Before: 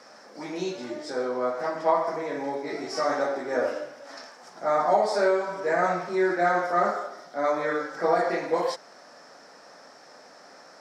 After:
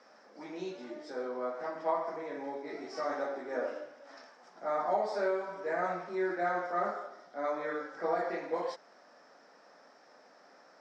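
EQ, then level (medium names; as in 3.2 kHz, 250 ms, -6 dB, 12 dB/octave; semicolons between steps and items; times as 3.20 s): high-pass 170 Hz 24 dB/octave; distance through air 100 m; band-stop 4.3 kHz, Q 29; -8.5 dB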